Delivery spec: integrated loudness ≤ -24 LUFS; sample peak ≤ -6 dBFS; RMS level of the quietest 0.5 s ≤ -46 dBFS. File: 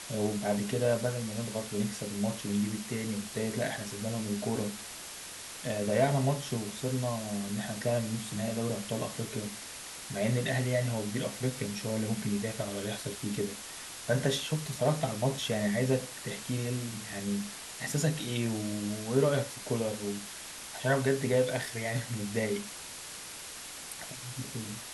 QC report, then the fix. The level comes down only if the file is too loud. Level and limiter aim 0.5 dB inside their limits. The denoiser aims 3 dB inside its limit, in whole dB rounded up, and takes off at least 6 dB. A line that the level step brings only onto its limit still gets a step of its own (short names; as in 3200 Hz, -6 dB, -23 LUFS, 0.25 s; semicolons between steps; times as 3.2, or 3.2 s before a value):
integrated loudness -33.0 LUFS: OK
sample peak -13.5 dBFS: OK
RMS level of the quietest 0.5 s -44 dBFS: fail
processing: denoiser 6 dB, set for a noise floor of -44 dBFS